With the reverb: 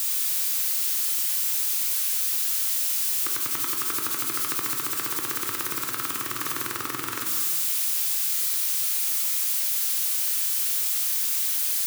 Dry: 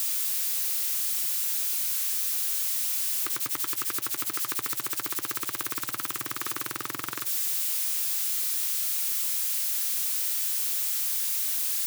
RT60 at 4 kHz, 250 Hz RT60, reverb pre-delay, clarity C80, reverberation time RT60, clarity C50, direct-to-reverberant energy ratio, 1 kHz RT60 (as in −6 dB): 1.1 s, 2.0 s, 19 ms, 5.0 dB, 1.7 s, 4.0 dB, 2.0 dB, 1.6 s